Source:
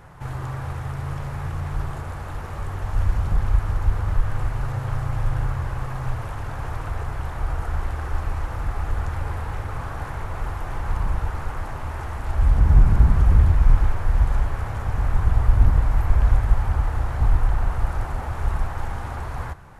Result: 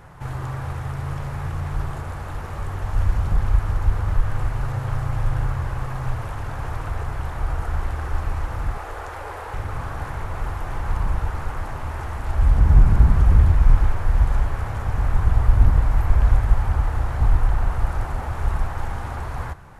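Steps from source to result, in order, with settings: 8.77–9.54 s: resonant low shelf 290 Hz -13 dB, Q 1.5; trim +1 dB

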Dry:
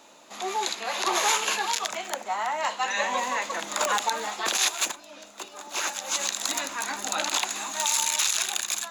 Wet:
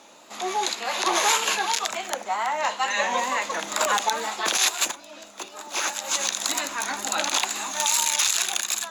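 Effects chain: wow and flutter 53 cents; trim +2.5 dB

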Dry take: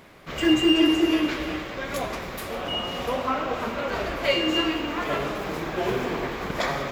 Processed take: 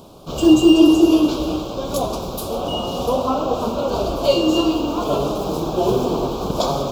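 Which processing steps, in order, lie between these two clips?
Butterworth band-stop 1.9 kHz, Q 0.76; trim +8.5 dB

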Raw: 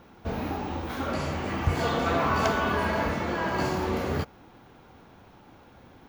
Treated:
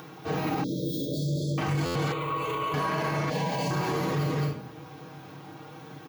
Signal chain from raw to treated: high-pass 100 Hz 24 dB/octave; treble shelf 3.5 kHz +6.5 dB; comb 6.4 ms, depth 69%; delay 220 ms -5.5 dB; simulated room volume 820 m³, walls furnished, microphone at 3.6 m; upward compressor, threshold -37 dBFS; 3.30–3.71 s: static phaser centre 350 Hz, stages 6; peak limiter -17.5 dBFS, peak gain reduction 12.5 dB; 0.64–1.58 s: brick-wall FIR band-stop 620–3200 Hz; 2.12–2.74 s: static phaser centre 1.1 kHz, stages 8; buffer glitch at 1.85 s, samples 512, times 8; trim -2.5 dB

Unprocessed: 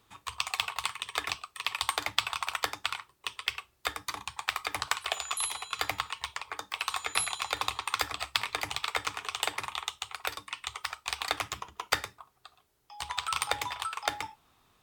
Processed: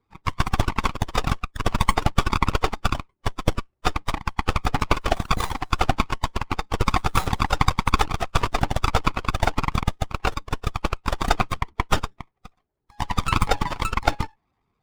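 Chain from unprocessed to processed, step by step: harmonic-percussive split percussive +6 dB; waveshaping leveller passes 3; loudest bins only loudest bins 32; sliding maximum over 17 samples

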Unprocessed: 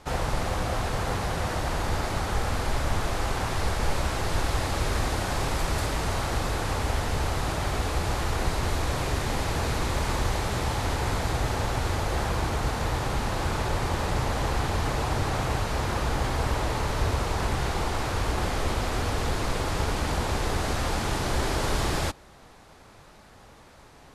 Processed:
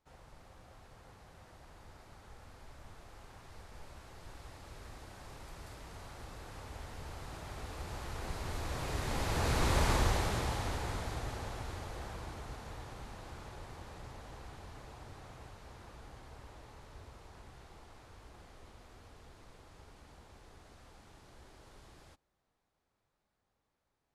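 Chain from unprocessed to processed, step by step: Doppler pass-by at 9.82 s, 7 m/s, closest 2.9 m; trim -2 dB

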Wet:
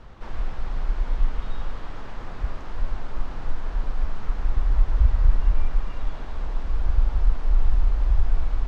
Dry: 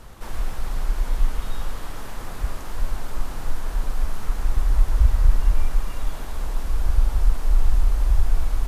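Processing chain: distance through air 180 m; trim -1.5 dB

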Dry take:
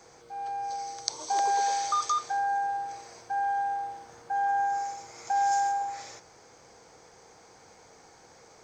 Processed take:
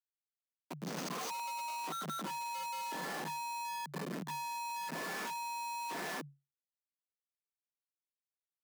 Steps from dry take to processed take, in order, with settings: 0.91–1.93 s: band-stop 1.5 kHz, Q 11; 4.10–4.70 s: high-pass 350 Hz 12 dB/octave; repeats whose band climbs or falls 314 ms, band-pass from 3.2 kHz, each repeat -1.4 oct, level -6 dB; low-pass that closes with the level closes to 880 Hz, closed at -24.5 dBFS; 2.66–3.56 s: dynamic bell 780 Hz, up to +5 dB, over -41 dBFS, Q 2.8; compression 2:1, threshold -32 dBFS, peak gain reduction 6 dB; saturation -28 dBFS, distortion -18 dB; spectral noise reduction 30 dB; Schmitt trigger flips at -46 dBFS; frequency shift +140 Hz; trim -1.5 dB

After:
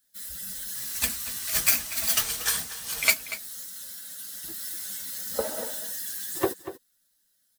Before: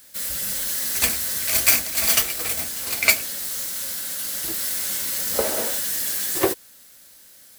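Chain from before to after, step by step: expander on every frequency bin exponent 1.5; 0.46–3.14 s: ever faster or slower copies 290 ms, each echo -6 st, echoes 2, each echo -6 dB; echo from a far wall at 41 m, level -12 dB; trim -3.5 dB

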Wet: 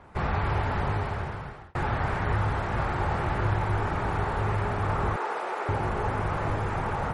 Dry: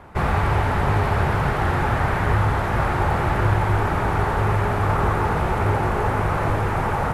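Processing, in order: 0.79–1.75 s: fade out; 5.16–5.69 s: high-pass 370 Hz 24 dB/octave; trim -6.5 dB; MP3 40 kbps 48 kHz

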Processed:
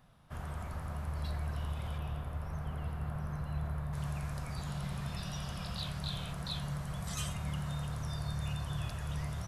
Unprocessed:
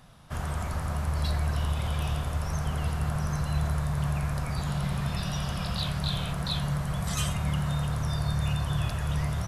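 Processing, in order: peaking EQ 6.6 kHz -6 dB 1.7 oct, from 1.98 s -15 dB, from 3.93 s +2 dB; trim -9 dB

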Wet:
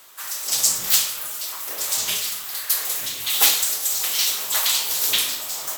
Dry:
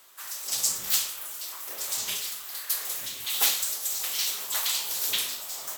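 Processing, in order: simulated room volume 1600 m³, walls mixed, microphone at 0.53 m; trim +7 dB

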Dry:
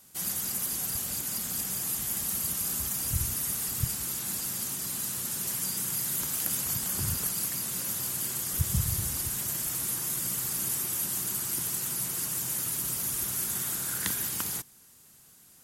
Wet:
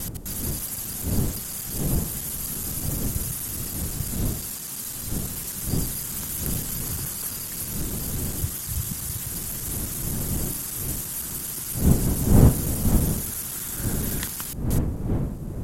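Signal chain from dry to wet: slices played last to first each 85 ms, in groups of 3; wind noise 170 Hz -27 dBFS

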